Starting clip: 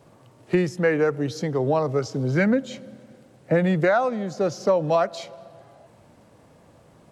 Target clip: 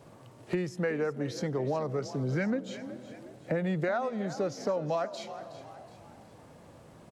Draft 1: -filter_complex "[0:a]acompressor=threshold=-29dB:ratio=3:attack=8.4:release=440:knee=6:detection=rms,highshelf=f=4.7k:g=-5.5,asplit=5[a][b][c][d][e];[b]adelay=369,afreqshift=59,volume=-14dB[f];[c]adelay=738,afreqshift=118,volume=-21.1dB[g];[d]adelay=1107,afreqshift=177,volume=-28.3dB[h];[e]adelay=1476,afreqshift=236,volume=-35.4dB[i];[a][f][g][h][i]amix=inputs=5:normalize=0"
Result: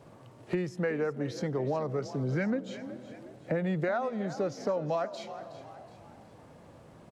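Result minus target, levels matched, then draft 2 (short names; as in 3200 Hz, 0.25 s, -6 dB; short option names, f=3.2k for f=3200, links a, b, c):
8000 Hz band -3.5 dB
-filter_complex "[0:a]acompressor=threshold=-29dB:ratio=3:attack=8.4:release=440:knee=6:detection=rms,asplit=5[a][b][c][d][e];[b]adelay=369,afreqshift=59,volume=-14dB[f];[c]adelay=738,afreqshift=118,volume=-21.1dB[g];[d]adelay=1107,afreqshift=177,volume=-28.3dB[h];[e]adelay=1476,afreqshift=236,volume=-35.4dB[i];[a][f][g][h][i]amix=inputs=5:normalize=0"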